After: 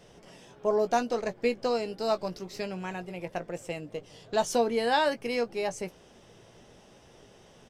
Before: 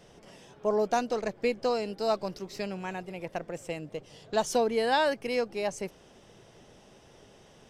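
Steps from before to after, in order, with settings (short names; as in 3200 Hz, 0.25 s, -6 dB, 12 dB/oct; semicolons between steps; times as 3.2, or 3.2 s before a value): doubler 17 ms -10 dB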